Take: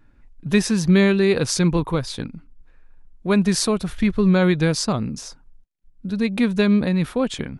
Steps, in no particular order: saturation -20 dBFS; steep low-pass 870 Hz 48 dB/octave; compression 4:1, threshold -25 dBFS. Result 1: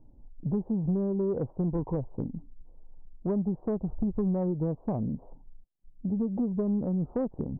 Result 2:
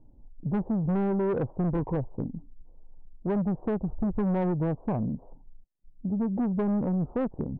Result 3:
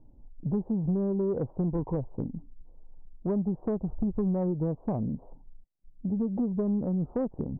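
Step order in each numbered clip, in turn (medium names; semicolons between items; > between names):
compression > steep low-pass > saturation; steep low-pass > saturation > compression; steep low-pass > compression > saturation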